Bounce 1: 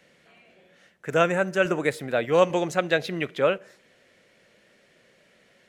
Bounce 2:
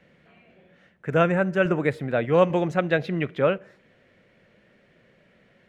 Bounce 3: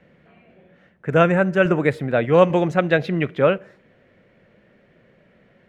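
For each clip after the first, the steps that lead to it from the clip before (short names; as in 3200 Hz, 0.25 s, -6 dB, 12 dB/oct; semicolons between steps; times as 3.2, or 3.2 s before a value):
tone controls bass +8 dB, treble -15 dB
mismatched tape noise reduction decoder only; gain +4.5 dB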